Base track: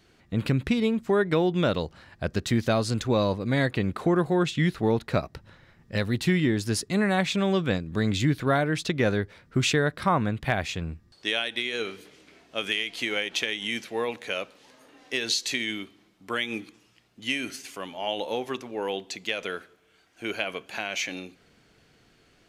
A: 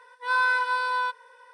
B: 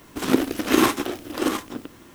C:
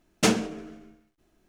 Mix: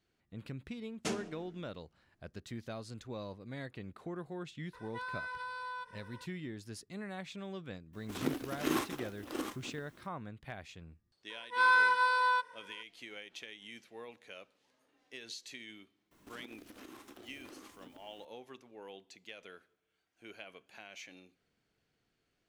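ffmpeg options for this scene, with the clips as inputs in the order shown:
-filter_complex "[1:a]asplit=2[s0][s1];[2:a]asplit=2[s2][s3];[0:a]volume=0.106[s4];[3:a]lowpass=f=12000:w=0.5412,lowpass=f=12000:w=1.3066[s5];[s0]acompressor=threshold=0.0141:ratio=6:attack=3.2:release=140:knee=1:detection=peak[s6];[s3]acompressor=threshold=0.0251:ratio=6:attack=3.2:release=140:knee=1:detection=peak[s7];[s5]atrim=end=1.48,asetpts=PTS-STARTPTS,volume=0.168,afade=t=in:d=0.004:c=hsin,afade=t=out:st=1.476:d=0.004:c=hsin,adelay=820[s8];[s6]atrim=end=1.53,asetpts=PTS-STARTPTS,volume=0.708,afade=t=in:d=0.004:c=hsin,afade=t=out:st=1.526:d=0.004:c=hsin,adelay=208593S[s9];[s2]atrim=end=2.14,asetpts=PTS-STARTPTS,volume=0.178,afade=t=in:d=0.004:c=hsin,afade=t=out:st=2.136:d=0.004:c=hsin,adelay=7930[s10];[s1]atrim=end=1.53,asetpts=PTS-STARTPTS,volume=0.75,afade=t=in:d=0.004:c=hsin,afade=t=out:st=1.526:d=0.004:c=hsin,adelay=498330S[s11];[s7]atrim=end=2.14,asetpts=PTS-STARTPTS,volume=0.133,afade=t=in:d=0.004:c=hsin,afade=t=out:st=2.136:d=0.004:c=hsin,adelay=16110[s12];[s4][s8][s9][s10][s11][s12]amix=inputs=6:normalize=0"

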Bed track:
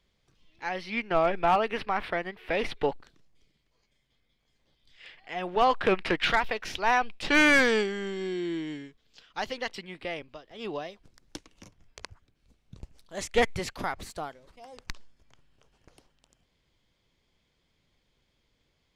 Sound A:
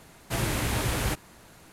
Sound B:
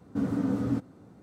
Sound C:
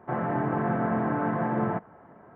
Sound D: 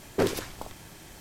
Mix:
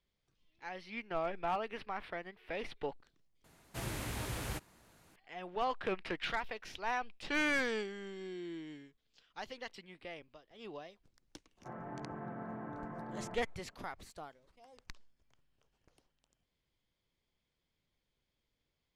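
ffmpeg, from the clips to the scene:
-filter_complex "[0:a]volume=0.251,asplit=2[s0][s1];[s0]atrim=end=3.444[s2];[1:a]atrim=end=1.72,asetpts=PTS-STARTPTS,volume=0.251[s3];[s1]atrim=start=5.156[s4];[3:a]atrim=end=2.35,asetpts=PTS-STARTPTS,volume=0.133,afade=t=in:d=0.004:c=hsin,afade=t=out:st=2.346:d=0.004:c=hsin,adelay=11570[s5];[s2][s3]acrossfade=d=0.004:c1=hsin:c2=hsin[s6];[s6][s4]acrossfade=d=0.004:c1=hsin:c2=hsin[s7];[s7][s5]amix=inputs=2:normalize=0"

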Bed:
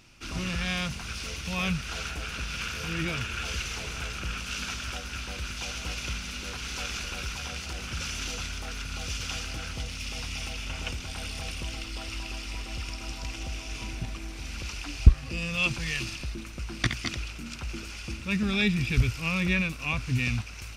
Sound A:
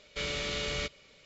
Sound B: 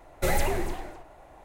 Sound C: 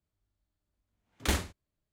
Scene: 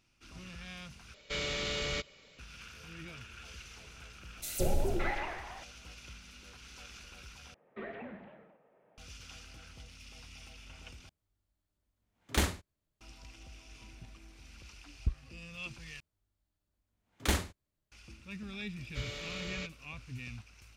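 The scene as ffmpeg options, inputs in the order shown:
-filter_complex "[1:a]asplit=2[s0][s1];[2:a]asplit=2[s2][s3];[3:a]asplit=2[s4][s5];[0:a]volume=0.15[s6];[s0]asoftclip=type=tanh:threshold=0.0668[s7];[s2]acrossover=split=720|3400[s8][s9][s10];[s8]adelay=170[s11];[s9]adelay=570[s12];[s11][s12][s10]amix=inputs=3:normalize=0[s13];[s3]highpass=f=280:t=q:w=0.5412,highpass=f=280:t=q:w=1.307,lowpass=f=3100:t=q:w=0.5176,lowpass=f=3100:t=q:w=0.7071,lowpass=f=3100:t=q:w=1.932,afreqshift=-150[s14];[s6]asplit=5[s15][s16][s17][s18][s19];[s15]atrim=end=1.144[s20];[s7]atrim=end=1.25,asetpts=PTS-STARTPTS,volume=0.944[s21];[s16]atrim=start=2.386:end=7.544[s22];[s14]atrim=end=1.44,asetpts=PTS-STARTPTS,volume=0.178[s23];[s17]atrim=start=8.976:end=11.094[s24];[s4]atrim=end=1.92,asetpts=PTS-STARTPTS,volume=0.944[s25];[s18]atrim=start=13.006:end=16.004[s26];[s5]atrim=end=1.92,asetpts=PTS-STARTPTS,volume=0.891[s27];[s19]atrim=start=17.916[s28];[s13]atrim=end=1.44,asetpts=PTS-STARTPTS,volume=0.708,afade=t=in:d=0.004:c=hsin,afade=t=out:st=1.436:d=0.004:c=hsin,adelay=4200[s29];[s1]atrim=end=1.25,asetpts=PTS-STARTPTS,volume=0.376,afade=t=in:d=0.004:c=hsin,afade=t=out:st=1.246:d=0.004:c=hsin,adelay=18790[s30];[s20][s21]acrossfade=d=0.004:c1=hsin:c2=hsin[s31];[s31][s22]acrossfade=d=0.004:c1=hsin:c2=hsin[s32];[s32][s23]acrossfade=d=0.004:c1=hsin:c2=hsin[s33];[s33][s24]acrossfade=d=0.004:c1=hsin:c2=hsin[s34];[s34][s25]acrossfade=d=0.004:c1=hsin:c2=hsin[s35];[s35][s26]acrossfade=d=0.004:c1=hsin:c2=hsin[s36];[s36][s27]acrossfade=d=0.004:c1=hsin:c2=hsin[s37];[s37][s28]acrossfade=d=0.004:c1=hsin:c2=hsin[s38];[s38][s29][s30]amix=inputs=3:normalize=0"

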